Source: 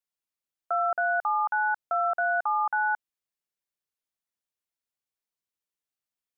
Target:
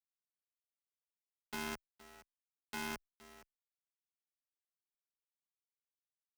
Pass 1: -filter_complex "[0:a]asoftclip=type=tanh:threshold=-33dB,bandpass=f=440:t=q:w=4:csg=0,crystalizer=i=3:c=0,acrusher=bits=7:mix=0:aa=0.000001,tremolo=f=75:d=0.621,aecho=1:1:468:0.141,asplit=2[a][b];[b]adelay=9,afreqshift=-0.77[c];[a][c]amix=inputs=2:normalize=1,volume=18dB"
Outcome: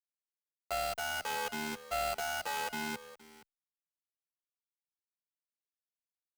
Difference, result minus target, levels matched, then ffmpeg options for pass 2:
500 Hz band +6.0 dB
-filter_complex "[0:a]asoftclip=type=tanh:threshold=-33dB,bandpass=f=200:t=q:w=4:csg=0,crystalizer=i=3:c=0,acrusher=bits=7:mix=0:aa=0.000001,tremolo=f=75:d=0.621,aecho=1:1:468:0.141,asplit=2[a][b];[b]adelay=9,afreqshift=-0.77[c];[a][c]amix=inputs=2:normalize=1,volume=18dB"

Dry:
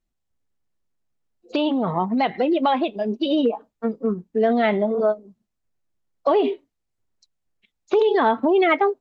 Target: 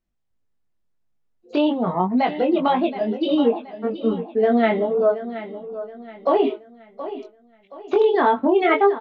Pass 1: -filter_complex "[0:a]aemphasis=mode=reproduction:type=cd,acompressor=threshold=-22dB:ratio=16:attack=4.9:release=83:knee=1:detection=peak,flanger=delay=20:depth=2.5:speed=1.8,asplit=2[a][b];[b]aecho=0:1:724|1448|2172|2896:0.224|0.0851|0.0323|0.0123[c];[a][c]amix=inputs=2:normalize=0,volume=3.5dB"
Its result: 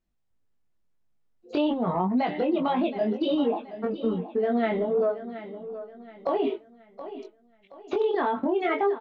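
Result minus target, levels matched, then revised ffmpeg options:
compressor: peak gain reduction +10 dB
-filter_complex "[0:a]aemphasis=mode=reproduction:type=cd,flanger=delay=20:depth=2.5:speed=1.8,asplit=2[a][b];[b]aecho=0:1:724|1448|2172|2896:0.224|0.0851|0.0323|0.0123[c];[a][c]amix=inputs=2:normalize=0,volume=3.5dB"

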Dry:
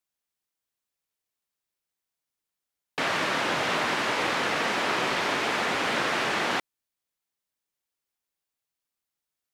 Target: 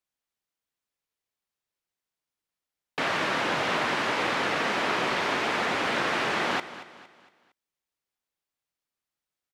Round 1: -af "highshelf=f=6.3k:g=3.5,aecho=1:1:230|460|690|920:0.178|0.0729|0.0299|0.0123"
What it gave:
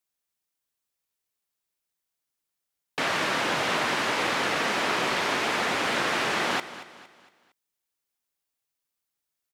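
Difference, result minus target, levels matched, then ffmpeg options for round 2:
8000 Hz band +5.0 dB
-af "highshelf=f=6.3k:g=-7,aecho=1:1:230|460|690|920:0.178|0.0729|0.0299|0.0123"

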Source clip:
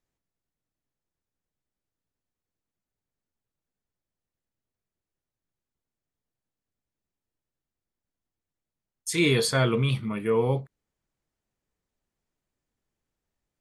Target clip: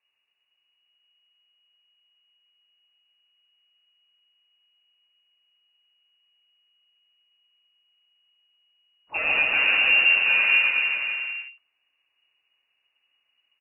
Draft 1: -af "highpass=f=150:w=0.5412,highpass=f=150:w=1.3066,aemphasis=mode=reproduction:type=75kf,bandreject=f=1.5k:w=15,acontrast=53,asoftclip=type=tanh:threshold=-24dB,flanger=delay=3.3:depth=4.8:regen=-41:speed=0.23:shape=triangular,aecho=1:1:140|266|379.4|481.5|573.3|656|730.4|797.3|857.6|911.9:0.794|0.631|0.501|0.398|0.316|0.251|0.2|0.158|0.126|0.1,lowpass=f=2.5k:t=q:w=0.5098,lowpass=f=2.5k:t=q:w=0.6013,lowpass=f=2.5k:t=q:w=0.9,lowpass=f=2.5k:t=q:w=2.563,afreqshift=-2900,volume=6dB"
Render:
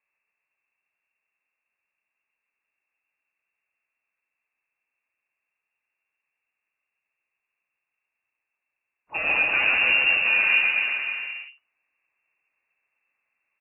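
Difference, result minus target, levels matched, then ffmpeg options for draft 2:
125 Hz band +3.0 dB
-af "aemphasis=mode=reproduction:type=75kf,bandreject=f=1.5k:w=15,acontrast=53,asoftclip=type=tanh:threshold=-24dB,flanger=delay=3.3:depth=4.8:regen=-41:speed=0.23:shape=triangular,aecho=1:1:140|266|379.4|481.5|573.3|656|730.4|797.3|857.6|911.9:0.794|0.631|0.501|0.398|0.316|0.251|0.2|0.158|0.126|0.1,lowpass=f=2.5k:t=q:w=0.5098,lowpass=f=2.5k:t=q:w=0.6013,lowpass=f=2.5k:t=q:w=0.9,lowpass=f=2.5k:t=q:w=2.563,afreqshift=-2900,volume=6dB"

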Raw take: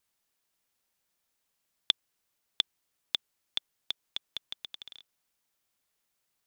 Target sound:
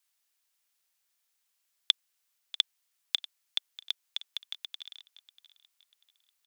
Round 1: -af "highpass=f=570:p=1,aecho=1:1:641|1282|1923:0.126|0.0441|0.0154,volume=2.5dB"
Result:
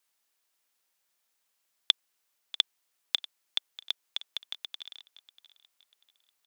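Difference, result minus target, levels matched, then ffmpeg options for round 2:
500 Hz band +6.5 dB
-af "highpass=f=1.8k:p=1,aecho=1:1:641|1282|1923:0.126|0.0441|0.0154,volume=2.5dB"

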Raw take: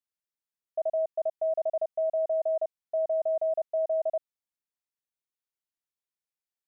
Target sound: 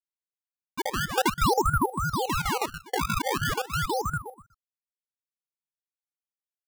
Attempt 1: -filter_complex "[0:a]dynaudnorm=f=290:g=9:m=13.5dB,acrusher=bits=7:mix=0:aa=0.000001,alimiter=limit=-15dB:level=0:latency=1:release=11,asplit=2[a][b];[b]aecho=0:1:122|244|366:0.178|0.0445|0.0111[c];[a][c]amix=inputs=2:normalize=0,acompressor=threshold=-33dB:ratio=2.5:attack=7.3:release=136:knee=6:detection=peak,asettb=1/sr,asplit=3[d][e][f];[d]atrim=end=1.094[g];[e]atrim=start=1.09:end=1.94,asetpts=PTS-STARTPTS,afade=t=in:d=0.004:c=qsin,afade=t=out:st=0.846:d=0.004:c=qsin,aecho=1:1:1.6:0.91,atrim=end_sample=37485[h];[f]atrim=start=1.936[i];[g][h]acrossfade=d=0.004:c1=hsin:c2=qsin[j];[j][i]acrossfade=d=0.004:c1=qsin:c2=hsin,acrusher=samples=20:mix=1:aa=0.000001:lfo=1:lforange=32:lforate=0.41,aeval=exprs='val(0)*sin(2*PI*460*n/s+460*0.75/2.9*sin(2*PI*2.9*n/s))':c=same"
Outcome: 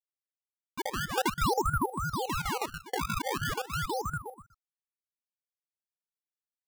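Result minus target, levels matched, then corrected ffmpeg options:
compressor: peak gain reduction +5 dB
-filter_complex "[0:a]dynaudnorm=f=290:g=9:m=13.5dB,acrusher=bits=7:mix=0:aa=0.000001,alimiter=limit=-15dB:level=0:latency=1:release=11,asplit=2[a][b];[b]aecho=0:1:122|244|366:0.178|0.0445|0.0111[c];[a][c]amix=inputs=2:normalize=0,acompressor=threshold=-25dB:ratio=2.5:attack=7.3:release=136:knee=6:detection=peak,asettb=1/sr,asplit=3[d][e][f];[d]atrim=end=1.094[g];[e]atrim=start=1.09:end=1.94,asetpts=PTS-STARTPTS,afade=t=in:d=0.004:c=qsin,afade=t=out:st=0.846:d=0.004:c=qsin,aecho=1:1:1.6:0.91,atrim=end_sample=37485[h];[f]atrim=start=1.936[i];[g][h]acrossfade=d=0.004:c1=hsin:c2=qsin[j];[j][i]acrossfade=d=0.004:c1=qsin:c2=hsin,acrusher=samples=20:mix=1:aa=0.000001:lfo=1:lforange=32:lforate=0.41,aeval=exprs='val(0)*sin(2*PI*460*n/s+460*0.75/2.9*sin(2*PI*2.9*n/s))':c=same"

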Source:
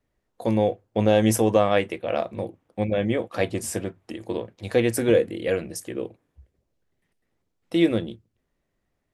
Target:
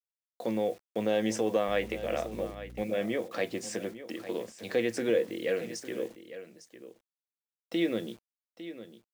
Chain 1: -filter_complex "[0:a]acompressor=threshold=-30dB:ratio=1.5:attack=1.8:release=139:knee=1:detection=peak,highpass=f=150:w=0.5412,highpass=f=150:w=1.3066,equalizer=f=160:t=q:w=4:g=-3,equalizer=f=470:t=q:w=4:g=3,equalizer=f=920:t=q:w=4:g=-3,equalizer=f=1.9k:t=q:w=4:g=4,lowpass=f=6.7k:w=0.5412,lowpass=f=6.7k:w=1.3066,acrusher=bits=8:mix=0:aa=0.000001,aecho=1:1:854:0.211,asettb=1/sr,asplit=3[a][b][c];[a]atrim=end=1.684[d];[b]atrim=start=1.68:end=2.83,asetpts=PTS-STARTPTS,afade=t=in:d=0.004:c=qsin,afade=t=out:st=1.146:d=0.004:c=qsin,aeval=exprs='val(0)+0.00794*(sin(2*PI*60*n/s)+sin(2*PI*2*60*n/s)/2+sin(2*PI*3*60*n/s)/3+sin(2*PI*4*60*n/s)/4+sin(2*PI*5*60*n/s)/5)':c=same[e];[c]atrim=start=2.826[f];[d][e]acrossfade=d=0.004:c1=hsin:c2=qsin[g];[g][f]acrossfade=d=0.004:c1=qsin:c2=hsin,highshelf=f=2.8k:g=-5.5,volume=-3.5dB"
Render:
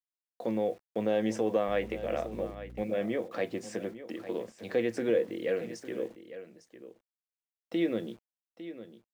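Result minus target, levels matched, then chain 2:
4000 Hz band -5.0 dB
-filter_complex "[0:a]acompressor=threshold=-30dB:ratio=1.5:attack=1.8:release=139:knee=1:detection=peak,highpass=f=150:w=0.5412,highpass=f=150:w=1.3066,equalizer=f=160:t=q:w=4:g=-3,equalizer=f=470:t=q:w=4:g=3,equalizer=f=920:t=q:w=4:g=-3,equalizer=f=1.9k:t=q:w=4:g=4,lowpass=f=6.7k:w=0.5412,lowpass=f=6.7k:w=1.3066,acrusher=bits=8:mix=0:aa=0.000001,aecho=1:1:854:0.211,asettb=1/sr,asplit=3[a][b][c];[a]atrim=end=1.684[d];[b]atrim=start=1.68:end=2.83,asetpts=PTS-STARTPTS,afade=t=in:d=0.004:c=qsin,afade=t=out:st=1.146:d=0.004:c=qsin,aeval=exprs='val(0)+0.00794*(sin(2*PI*60*n/s)+sin(2*PI*2*60*n/s)/2+sin(2*PI*3*60*n/s)/3+sin(2*PI*4*60*n/s)/4+sin(2*PI*5*60*n/s)/5)':c=same[e];[c]atrim=start=2.826[f];[d][e]acrossfade=d=0.004:c1=hsin:c2=qsin[g];[g][f]acrossfade=d=0.004:c1=qsin:c2=hsin,highshelf=f=2.8k:g=4,volume=-3.5dB"

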